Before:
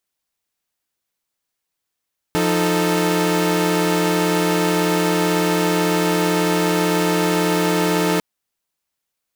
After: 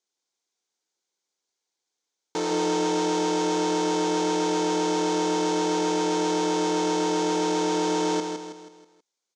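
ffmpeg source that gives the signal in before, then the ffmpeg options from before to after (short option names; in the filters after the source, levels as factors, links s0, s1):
-f lavfi -i "aevalsrc='0.126*((2*mod(174.61*t,1)-1)+(2*mod(311.13*t,1)-1)+(2*mod(440*t,1)-1))':d=5.85:s=44100"
-af "asoftclip=type=hard:threshold=0.0794,highpass=330,equalizer=f=380:t=q:w=4:g=5,equalizer=f=630:t=q:w=4:g=-6,equalizer=f=1200:t=q:w=4:g=-7,equalizer=f=1800:t=q:w=4:g=-8,equalizer=f=2700:t=q:w=4:g=-8,equalizer=f=6400:t=q:w=4:g=5,lowpass=f=7000:w=0.5412,lowpass=f=7000:w=1.3066,aecho=1:1:161|322|483|644|805:0.501|0.226|0.101|0.0457|0.0206"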